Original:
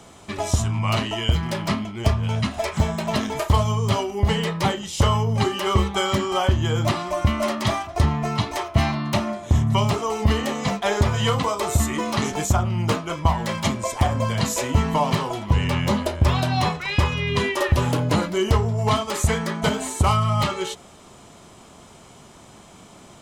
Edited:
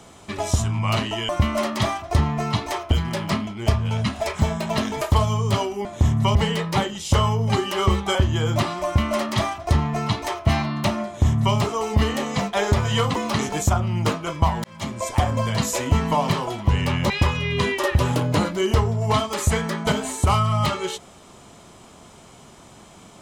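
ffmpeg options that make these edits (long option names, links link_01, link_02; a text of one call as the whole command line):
ffmpeg -i in.wav -filter_complex "[0:a]asplit=9[link_01][link_02][link_03][link_04][link_05][link_06][link_07][link_08][link_09];[link_01]atrim=end=1.292[link_10];[link_02]atrim=start=7.138:end=8.762[link_11];[link_03]atrim=start=1.288:end=4.232[link_12];[link_04]atrim=start=9.348:end=9.852[link_13];[link_05]atrim=start=4.228:end=6.032[link_14];[link_06]atrim=start=6.438:end=11.452[link_15];[link_07]atrim=start=11.988:end=13.47,asetpts=PTS-STARTPTS,afade=type=out:start_time=1.478:duration=0.004:curve=hsin[link_16];[link_08]atrim=start=13.47:end=15.932,asetpts=PTS-STARTPTS,afade=type=in:duration=0.46[link_17];[link_09]atrim=start=16.868[link_18];[link_10][link_11]acrossfade=duration=0.004:curve1=hsin:curve2=hsin[link_19];[link_19][link_12]acrossfade=duration=0.004:curve1=hsin:curve2=hsin[link_20];[link_20][link_13]acrossfade=duration=0.004:curve1=hsin:curve2=hsin[link_21];[link_21][link_14]acrossfade=duration=0.004:curve1=hsin:curve2=hsin[link_22];[link_22][link_15]acrossfade=duration=0.004:curve1=hsin:curve2=hsin[link_23];[link_16][link_17]concat=n=2:v=0:a=1[link_24];[link_23][link_24]acrossfade=duration=0.004:curve1=hsin:curve2=hsin[link_25];[link_25][link_18]acrossfade=duration=0.004:curve1=hsin:curve2=hsin" out.wav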